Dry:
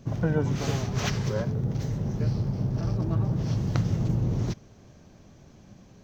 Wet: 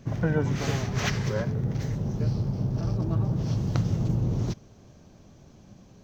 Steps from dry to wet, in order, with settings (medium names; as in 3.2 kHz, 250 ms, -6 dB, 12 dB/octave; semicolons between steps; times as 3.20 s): peaking EQ 1.9 kHz +5 dB, from 1.95 s -3.5 dB